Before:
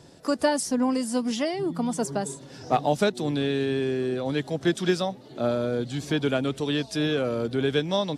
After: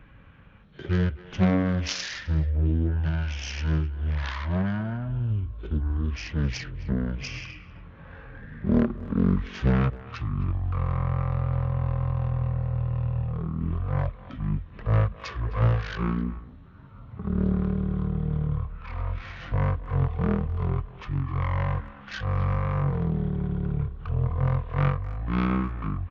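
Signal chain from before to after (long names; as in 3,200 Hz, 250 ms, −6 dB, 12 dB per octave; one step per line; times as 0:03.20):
phase distortion by the signal itself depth 0.17 ms
change of speed 0.313×
far-end echo of a speakerphone 260 ms, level −16 dB
dynamic equaliser 840 Hz, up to −5 dB, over −51 dBFS, Q 4.7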